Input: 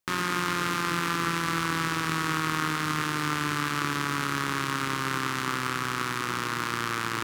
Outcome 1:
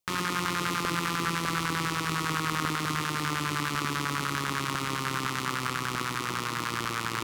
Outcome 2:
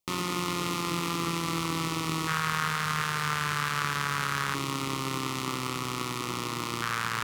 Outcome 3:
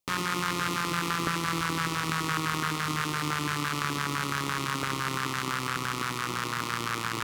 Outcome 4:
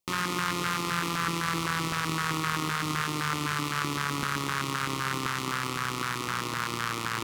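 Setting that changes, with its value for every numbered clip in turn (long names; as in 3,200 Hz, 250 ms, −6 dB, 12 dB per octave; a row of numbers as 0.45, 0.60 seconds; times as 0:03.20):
auto-filter notch, speed: 10, 0.22, 5.9, 3.9 Hertz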